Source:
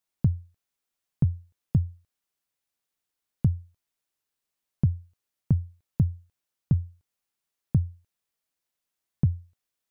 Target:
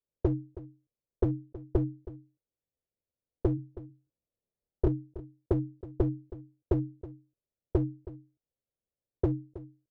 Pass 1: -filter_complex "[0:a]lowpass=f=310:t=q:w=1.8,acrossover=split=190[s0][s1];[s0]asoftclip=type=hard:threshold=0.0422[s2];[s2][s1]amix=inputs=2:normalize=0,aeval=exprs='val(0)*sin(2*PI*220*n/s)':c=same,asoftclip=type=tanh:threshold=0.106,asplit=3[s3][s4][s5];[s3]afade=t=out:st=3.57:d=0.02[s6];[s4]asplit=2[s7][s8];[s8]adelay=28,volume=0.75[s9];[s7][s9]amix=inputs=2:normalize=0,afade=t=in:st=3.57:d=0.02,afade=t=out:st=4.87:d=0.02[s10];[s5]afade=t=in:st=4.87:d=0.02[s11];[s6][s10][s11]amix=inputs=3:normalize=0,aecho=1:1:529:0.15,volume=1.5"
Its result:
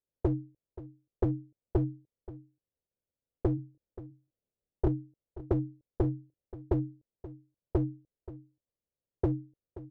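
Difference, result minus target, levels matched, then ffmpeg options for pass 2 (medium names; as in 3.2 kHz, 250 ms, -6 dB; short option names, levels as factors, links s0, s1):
echo 208 ms late; saturation: distortion +15 dB
-filter_complex "[0:a]lowpass=f=310:t=q:w=1.8,acrossover=split=190[s0][s1];[s0]asoftclip=type=hard:threshold=0.0422[s2];[s2][s1]amix=inputs=2:normalize=0,aeval=exprs='val(0)*sin(2*PI*220*n/s)':c=same,asoftclip=type=tanh:threshold=0.316,asplit=3[s3][s4][s5];[s3]afade=t=out:st=3.57:d=0.02[s6];[s4]asplit=2[s7][s8];[s8]adelay=28,volume=0.75[s9];[s7][s9]amix=inputs=2:normalize=0,afade=t=in:st=3.57:d=0.02,afade=t=out:st=4.87:d=0.02[s10];[s5]afade=t=in:st=4.87:d=0.02[s11];[s6][s10][s11]amix=inputs=3:normalize=0,aecho=1:1:321:0.15,volume=1.5"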